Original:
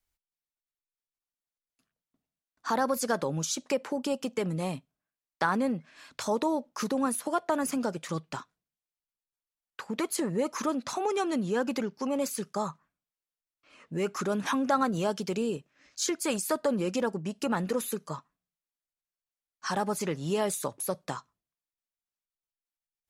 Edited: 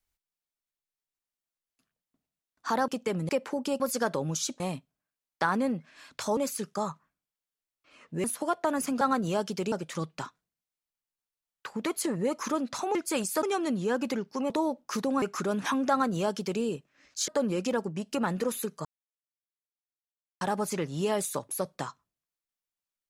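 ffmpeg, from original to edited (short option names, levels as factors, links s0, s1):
-filter_complex "[0:a]asplit=16[s0][s1][s2][s3][s4][s5][s6][s7][s8][s9][s10][s11][s12][s13][s14][s15];[s0]atrim=end=2.882[s16];[s1]atrim=start=4.188:end=4.602[s17];[s2]atrim=start=3.678:end=4.192[s18];[s3]atrim=start=2.878:end=3.682[s19];[s4]atrim=start=4.598:end=6.372[s20];[s5]atrim=start=12.158:end=14.032[s21];[s6]atrim=start=7.088:end=7.862[s22];[s7]atrim=start=14.708:end=15.422[s23];[s8]atrim=start=7.858:end=11.092[s24];[s9]atrim=start=16.088:end=16.572[s25];[s10]atrim=start=11.088:end=12.162[s26];[s11]atrim=start=6.368:end=7.092[s27];[s12]atrim=start=14.028:end=16.092[s28];[s13]atrim=start=16.568:end=18.14,asetpts=PTS-STARTPTS,afade=t=out:st=1.568:d=0.004:c=hsin[s29];[s14]atrim=start=18.14:end=19.7,asetpts=PTS-STARTPTS,volume=0[s30];[s15]atrim=start=19.7,asetpts=PTS-STARTPTS,afade=t=in:d=0.004:c=hsin[s31];[s16][s17]acrossfade=d=0.004:c1=hsin:c2=hsin[s32];[s32][s18]acrossfade=d=0.004:c1=hsin:c2=hsin[s33];[s33][s19]acrossfade=d=0.004:c1=hsin:c2=hsin[s34];[s34][s20]acrossfade=d=0.004:c1=hsin:c2=hsin[s35];[s35][s21]acrossfade=d=0.004:c1=hsin:c2=hsin[s36];[s36][s22]acrossfade=d=0.004:c1=hsin:c2=hsin[s37];[s37][s23]acrossfade=d=0.004:c1=hsin:c2=hsin[s38];[s38][s24]acrossfade=d=0.004:c1=hsin:c2=hsin[s39];[s39][s25]acrossfade=d=0.004:c1=hsin:c2=hsin[s40];[s40][s26]acrossfade=d=0.004:c1=hsin:c2=hsin[s41];[s41][s27]acrossfade=d=0.004:c1=hsin:c2=hsin[s42];[s42][s28]acrossfade=d=0.004:c1=hsin:c2=hsin[s43];[s29][s30][s31]concat=n=3:v=0:a=1[s44];[s43][s44]acrossfade=d=0.004:c1=hsin:c2=hsin"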